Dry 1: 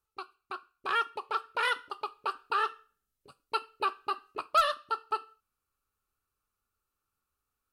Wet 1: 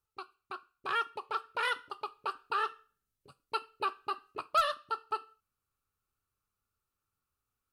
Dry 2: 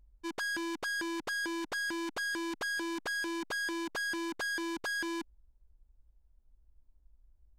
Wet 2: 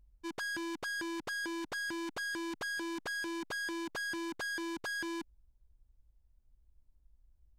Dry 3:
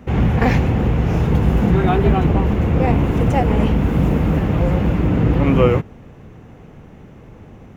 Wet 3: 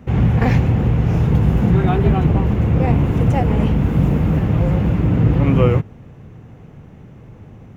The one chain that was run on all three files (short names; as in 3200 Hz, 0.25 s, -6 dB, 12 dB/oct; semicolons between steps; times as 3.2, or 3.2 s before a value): bell 120 Hz +7 dB 1.2 oct; gain -3 dB